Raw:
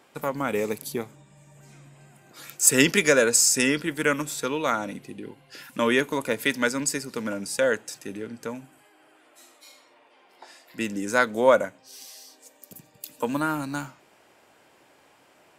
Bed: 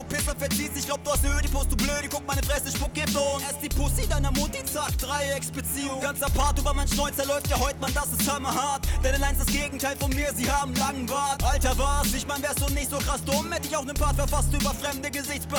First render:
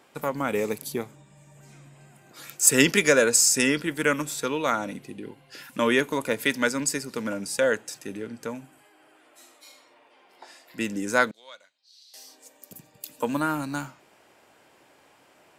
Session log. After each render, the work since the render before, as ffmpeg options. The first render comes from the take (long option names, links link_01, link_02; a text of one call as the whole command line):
ffmpeg -i in.wav -filter_complex "[0:a]asettb=1/sr,asplit=3[link_01][link_02][link_03];[link_01]atrim=end=11.314[link_04];[link_02]atrim=start=11.31:end=12.14,asetpts=PTS-STARTPTS,afade=type=in:duration=0.004:curve=qsin,afade=type=out:start_time=0.826:duration=0.004:curve=qsin,bandpass=frequency=4100:width_type=q:width=6.4[link_05];[link_03]atrim=start=12.136[link_06];[link_04][link_05]acrossfade=duration=0.004:curve1=hsin:curve2=qsin[link_07];[link_07][link_06]acrossfade=duration=0.004:curve1=qsin:curve2=hsin" out.wav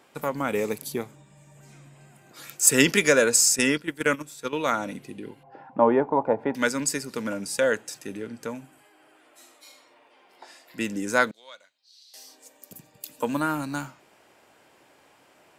ffmpeg -i in.wav -filter_complex "[0:a]asettb=1/sr,asplit=3[link_01][link_02][link_03];[link_01]atrim=end=3.564[link_04];[link_02]atrim=start=3.56:end=4.53,asetpts=PTS-STARTPTS,afade=type=in:duration=0.004:curve=qsin,afade=type=out:start_time=0.966:duration=0.004:curve=qsin,agate=range=-11dB:threshold=-27dB:ratio=16:release=100:detection=peak[link_05];[link_03]atrim=start=4.526[link_06];[link_04][link_05]acrossfade=duration=0.004:curve1=hsin:curve2=qsin[link_07];[link_07][link_06]acrossfade=duration=0.004:curve1=qsin:curve2=hsin,asettb=1/sr,asplit=3[link_08][link_09][link_10];[link_08]atrim=end=5.434[link_11];[link_09]atrim=start=5.43:end=6.55,asetpts=PTS-STARTPTS,afade=type=in:duration=0.004:curve=qsin,afade=type=out:start_time=1.116:duration=0.004:curve=qsin,lowpass=frequency=810:width_type=q:width=7.7[link_12];[link_10]atrim=start=6.546[link_13];[link_11][link_12]acrossfade=duration=0.004:curve1=hsin:curve2=qsin[link_14];[link_14][link_13]acrossfade=duration=0.004:curve1=qsin:curve2=hsin" out.wav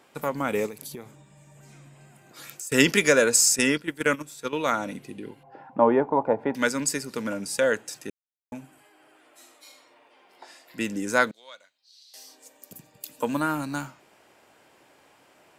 ffmpeg -i in.wav -filter_complex "[0:a]asettb=1/sr,asplit=3[link_01][link_02][link_03];[link_01]atrim=end=0.664[link_04];[link_02]atrim=start=0.66:end=2.72,asetpts=PTS-STARTPTS,afade=type=in:duration=0.004:curve=qsin,afade=type=out:start_time=2.056:duration=0.004:curve=qsin,acompressor=threshold=-34dB:ratio=10:attack=3.2:release=140:knee=1:detection=peak[link_05];[link_03]atrim=start=2.716[link_06];[link_04][link_05]acrossfade=duration=0.004:curve1=hsin:curve2=qsin[link_07];[link_07][link_06]acrossfade=duration=0.004:curve1=qsin:curve2=hsin,asplit=3[link_08][link_09][link_10];[link_08]atrim=end=8.1,asetpts=PTS-STARTPTS,afade=type=out:start_time=8.096:duration=0.004:curve=hsin[link_11];[link_09]atrim=start=8.1:end=8.52,asetpts=PTS-STARTPTS,volume=0[link_12];[link_10]atrim=start=8.52,asetpts=PTS-STARTPTS,afade=type=in:duration=0.004:curve=hsin[link_13];[link_11][link_12][link_13]concat=n=3:v=0:a=1" out.wav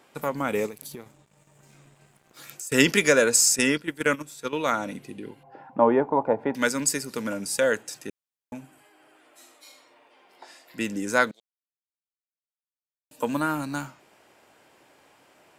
ffmpeg -i in.wav -filter_complex "[0:a]asettb=1/sr,asplit=3[link_01][link_02][link_03];[link_01]atrim=end=0.714[link_04];[link_02]atrim=start=0.71:end=2.5,asetpts=PTS-STARTPTS,afade=type=in:duration=0.004:curve=qsin,afade=type=out:start_time=1.786:duration=0.004:curve=qsin,aeval=exprs='sgn(val(0))*max(abs(val(0))-0.00188,0)':channel_layout=same[link_05];[link_03]atrim=start=2.496[link_06];[link_04][link_05]acrossfade=duration=0.004:curve1=hsin:curve2=qsin[link_07];[link_07][link_06]acrossfade=duration=0.004:curve1=qsin:curve2=hsin,asettb=1/sr,asplit=3[link_08][link_09][link_10];[link_08]atrim=end=6.614[link_11];[link_09]atrim=start=6.61:end=7.83,asetpts=PTS-STARTPTS,afade=type=in:duration=0.004:curve=qsin,afade=type=out:start_time=1.216:duration=0.004:curve=qsin,highshelf=frequency=7900:gain=5.5[link_12];[link_10]atrim=start=7.826[link_13];[link_11][link_12]acrossfade=duration=0.004:curve1=hsin:curve2=qsin[link_14];[link_14][link_13]acrossfade=duration=0.004:curve1=qsin:curve2=hsin,asplit=3[link_15][link_16][link_17];[link_15]atrim=end=11.4,asetpts=PTS-STARTPTS,afade=type=out:start_time=11.396:duration=0.004:curve=hsin[link_18];[link_16]atrim=start=11.4:end=13.11,asetpts=PTS-STARTPTS,volume=0[link_19];[link_17]atrim=start=13.11,asetpts=PTS-STARTPTS,afade=type=in:duration=0.004:curve=hsin[link_20];[link_18][link_19][link_20]concat=n=3:v=0:a=1" out.wav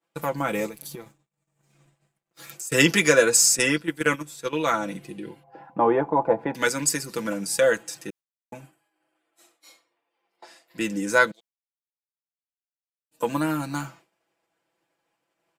ffmpeg -i in.wav -af "aecho=1:1:6:0.71,agate=range=-33dB:threshold=-43dB:ratio=3:detection=peak" out.wav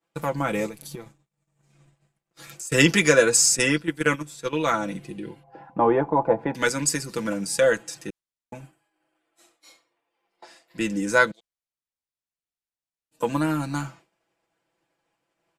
ffmpeg -i in.wav -af "lowpass=11000,lowshelf=frequency=110:gain=9.5" out.wav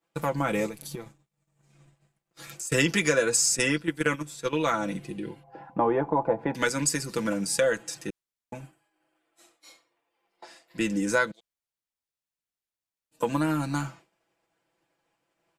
ffmpeg -i in.wav -af "acompressor=threshold=-22dB:ratio=2.5" out.wav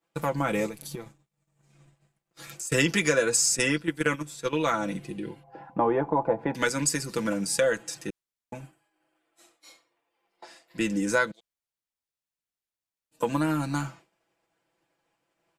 ffmpeg -i in.wav -af anull out.wav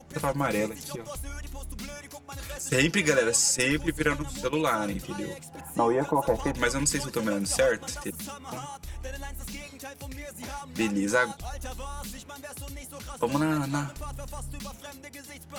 ffmpeg -i in.wav -i bed.wav -filter_complex "[1:a]volume=-13.5dB[link_01];[0:a][link_01]amix=inputs=2:normalize=0" out.wav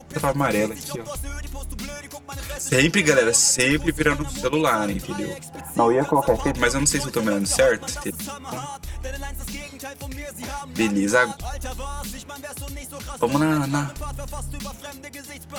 ffmpeg -i in.wav -af "volume=6dB,alimiter=limit=-3dB:level=0:latency=1" out.wav